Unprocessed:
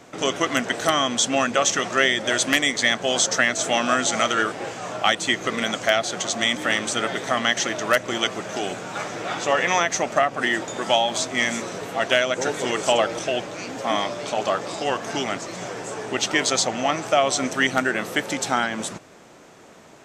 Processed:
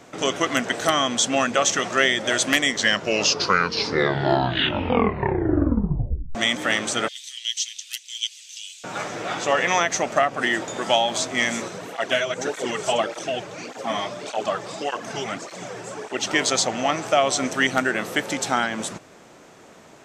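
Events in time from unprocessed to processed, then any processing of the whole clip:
2.6 tape stop 3.75 s
7.08–8.84 steep high-pass 2900 Hz
11.68–16.27 tape flanging out of phase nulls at 1.7 Hz, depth 4.3 ms

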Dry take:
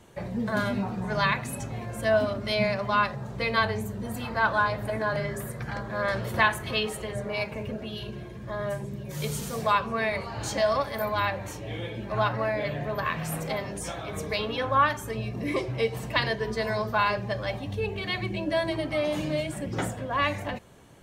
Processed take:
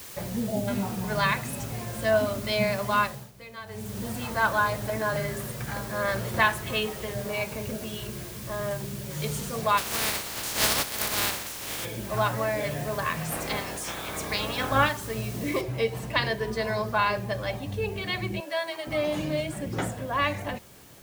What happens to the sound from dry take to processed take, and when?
0.47–0.68 spectral delete 840–6800 Hz
3–3.98 dip -17 dB, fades 0.32 s
6.6–8.71 LPF 3900 Hz 24 dB/oct
9.77–11.84 spectral contrast lowered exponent 0.18
13.3–14.88 spectral limiter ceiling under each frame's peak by 16 dB
15.61 noise floor step -43 dB -54 dB
18.4–18.87 HPF 710 Hz

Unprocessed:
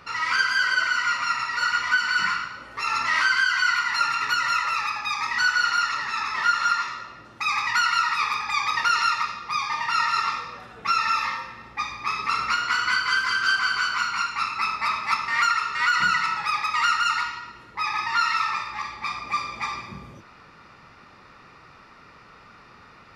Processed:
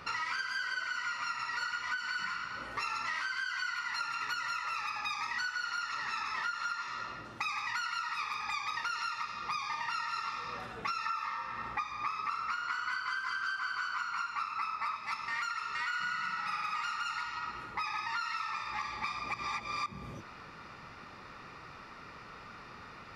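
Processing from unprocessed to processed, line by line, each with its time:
11.06–14.97 bell 1200 Hz +8 dB 1.1 oct
15.83–16.74 reverb throw, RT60 2.4 s, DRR -3 dB
19.34–19.86 reverse
whole clip: compressor 12:1, threshold -33 dBFS

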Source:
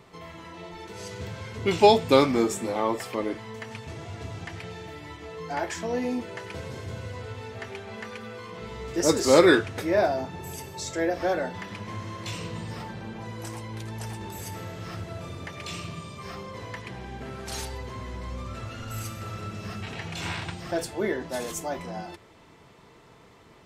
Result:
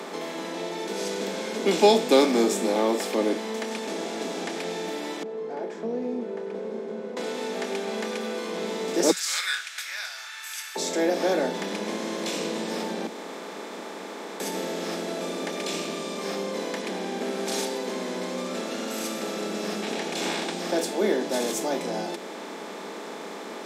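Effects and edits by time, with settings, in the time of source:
5.23–7.17 double band-pass 300 Hz, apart 0.89 oct
9.11–10.76 Chebyshev high-pass 1400 Hz, order 5
13.07–14.4 room tone
whole clip: per-bin compression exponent 0.6; steep high-pass 180 Hz 96 dB/oct; dynamic EQ 1300 Hz, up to -7 dB, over -38 dBFS, Q 0.87

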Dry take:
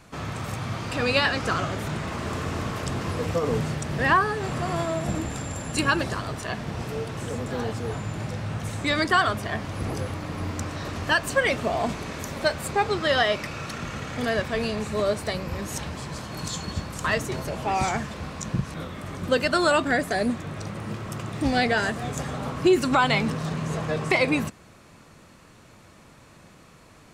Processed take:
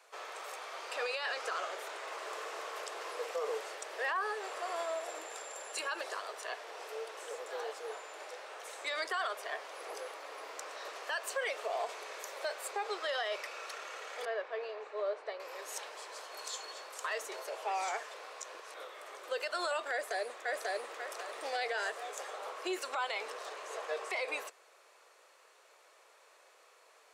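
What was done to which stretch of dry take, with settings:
14.25–15.4 tape spacing loss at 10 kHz 30 dB
19.91–20.95 echo throw 0.54 s, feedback 30%, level -1 dB
whole clip: steep high-pass 420 Hz 48 dB/oct; limiter -18.5 dBFS; gain -8 dB

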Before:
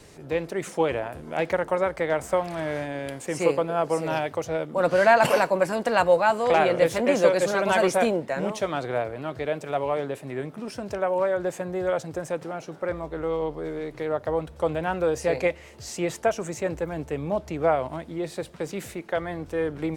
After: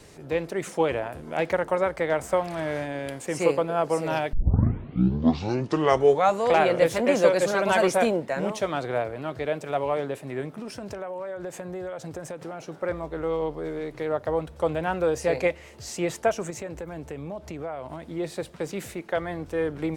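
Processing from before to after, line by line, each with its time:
4.33 tape start 2.17 s
10.59–12.66 compressor, threshold -31 dBFS
16.5–18.03 compressor 4:1, threshold -32 dBFS

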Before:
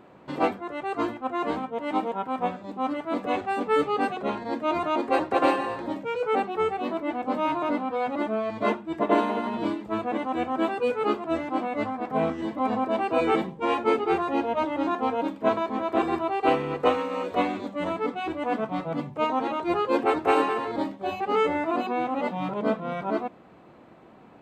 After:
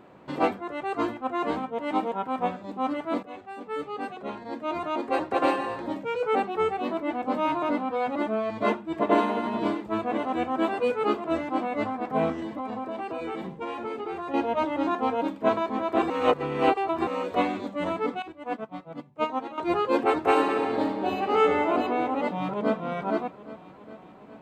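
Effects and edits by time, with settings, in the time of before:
3.23–6.11 fade in, from -16 dB
8.42–9.17 echo throw 0.54 s, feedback 70%, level -12 dB
12.39–14.34 compressor 10:1, threshold -29 dBFS
16.1–17.07 reverse
18.22–19.58 upward expander 2.5:1, over -34 dBFS
20.37–21.71 reverb throw, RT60 2.3 s, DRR 2.5 dB
22.29–22.82 echo throw 0.41 s, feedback 70%, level -14 dB

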